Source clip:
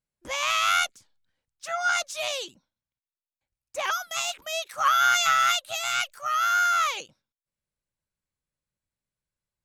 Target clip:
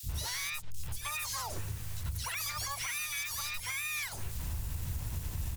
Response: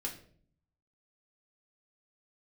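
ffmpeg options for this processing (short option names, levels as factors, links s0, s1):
-filter_complex "[0:a]aeval=exprs='val(0)+0.5*0.0224*sgn(val(0))':c=same,aeval=exprs='val(0)+0.00141*(sin(2*PI*60*n/s)+sin(2*PI*2*60*n/s)/2+sin(2*PI*3*60*n/s)/3+sin(2*PI*4*60*n/s)/4+sin(2*PI*5*60*n/s)/5)':c=same,asetrate=76440,aresample=44100,lowshelf=f=170:t=q:w=1.5:g=11,bandreject=f=60:t=h:w=6,bandreject=f=120:t=h:w=6,bandreject=f=180:t=h:w=6,bandreject=f=240:t=h:w=6,bandreject=f=300:t=h:w=6,bandreject=f=360:t=h:w=6,bandreject=f=420:t=h:w=6,bandreject=f=480:t=h:w=6,acrossover=split=190|3800[s0][s1][s2];[s0]adelay=50[s3];[s1]adelay=90[s4];[s3][s4][s2]amix=inputs=3:normalize=0,acrossover=split=5900[s5][s6];[s5]acompressor=threshold=0.0158:ratio=12[s7];[s6]asoftclip=type=tanh:threshold=0.0141[s8];[s7][s8]amix=inputs=2:normalize=0,asplit=4[s9][s10][s11][s12];[s10]asetrate=22050,aresample=44100,atempo=2,volume=0.158[s13];[s11]asetrate=33038,aresample=44100,atempo=1.33484,volume=0.282[s14];[s12]asetrate=66075,aresample=44100,atempo=0.66742,volume=0.316[s15];[s9][s13][s14][s15]amix=inputs=4:normalize=0,equalizer=f=65:w=2.2:g=11,alimiter=level_in=1.41:limit=0.0631:level=0:latency=1:release=106,volume=0.708"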